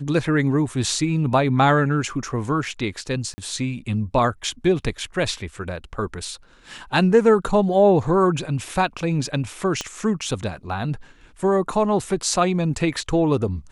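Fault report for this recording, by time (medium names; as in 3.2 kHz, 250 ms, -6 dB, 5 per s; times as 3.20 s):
3.34–3.38 s: dropout 40 ms
9.81 s: pop -12 dBFS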